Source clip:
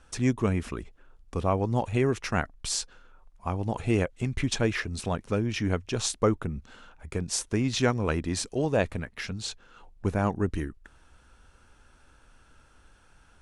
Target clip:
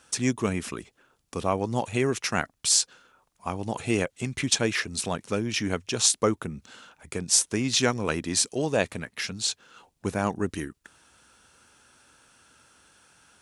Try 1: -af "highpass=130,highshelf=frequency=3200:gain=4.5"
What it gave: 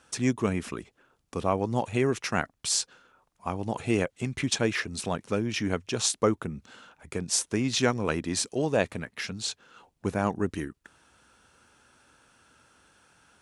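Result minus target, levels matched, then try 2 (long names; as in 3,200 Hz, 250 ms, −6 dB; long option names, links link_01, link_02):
8,000 Hz band −3.5 dB
-af "highpass=130,highshelf=frequency=3200:gain=11.5"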